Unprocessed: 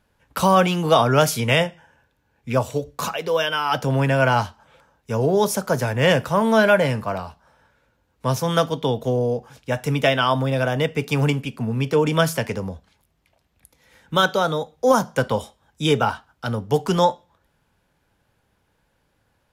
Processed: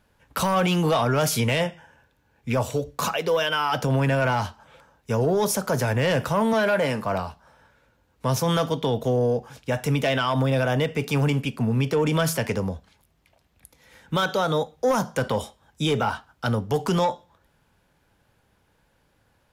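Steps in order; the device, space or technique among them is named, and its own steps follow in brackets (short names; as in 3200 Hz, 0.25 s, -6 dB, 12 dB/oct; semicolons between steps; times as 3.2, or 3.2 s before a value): soft clipper into limiter (soft clip -10 dBFS, distortion -18 dB; limiter -17 dBFS, peak gain reduction 6.5 dB); 6.53–7.05 HPF 190 Hz; gain +2 dB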